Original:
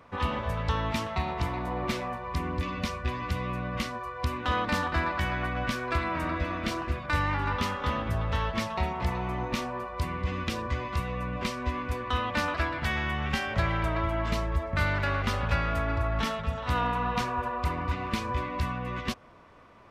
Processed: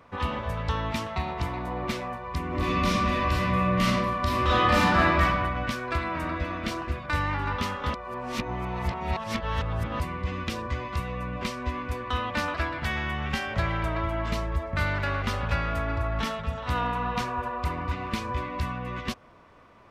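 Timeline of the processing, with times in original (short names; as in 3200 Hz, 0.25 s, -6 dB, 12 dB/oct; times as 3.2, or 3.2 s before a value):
2.47–5.21 reverb throw, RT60 1.2 s, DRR -7.5 dB
7.94–10 reverse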